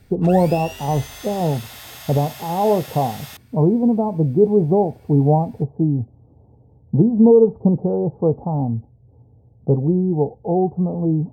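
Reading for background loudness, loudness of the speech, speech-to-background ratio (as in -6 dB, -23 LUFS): -36.0 LUFS, -19.0 LUFS, 17.0 dB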